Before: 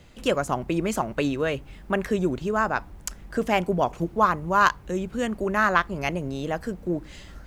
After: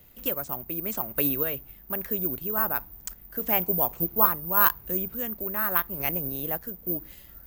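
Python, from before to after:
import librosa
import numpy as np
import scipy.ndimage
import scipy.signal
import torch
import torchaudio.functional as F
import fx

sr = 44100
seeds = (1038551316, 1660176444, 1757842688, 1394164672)

y = (np.kron(x[::3], np.eye(3)[0]) * 3)[:len(x)]
y = fx.tremolo_random(y, sr, seeds[0], hz=3.5, depth_pct=55)
y = y * 10.0 ** (-5.0 / 20.0)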